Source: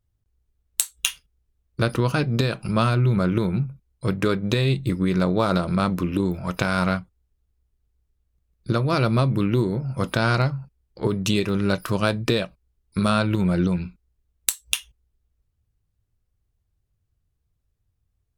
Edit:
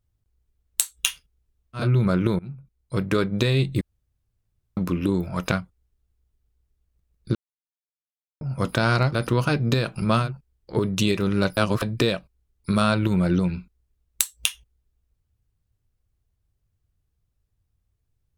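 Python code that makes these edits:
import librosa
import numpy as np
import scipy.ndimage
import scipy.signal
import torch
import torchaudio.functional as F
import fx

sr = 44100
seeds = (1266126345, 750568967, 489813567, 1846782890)

y = fx.edit(x, sr, fx.move(start_s=1.81, length_s=1.11, to_s=10.53, crossfade_s=0.16),
    fx.fade_in_from(start_s=3.5, length_s=0.92, curve='qsin', floor_db=-21.5),
    fx.room_tone_fill(start_s=4.92, length_s=0.96),
    fx.cut(start_s=6.63, length_s=0.28),
    fx.silence(start_s=8.74, length_s=1.06),
    fx.reverse_span(start_s=11.85, length_s=0.25), tone=tone)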